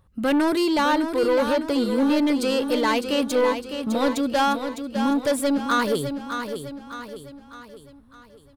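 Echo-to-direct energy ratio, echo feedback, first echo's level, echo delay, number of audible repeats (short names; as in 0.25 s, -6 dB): -7.0 dB, 47%, -8.0 dB, 0.606 s, 5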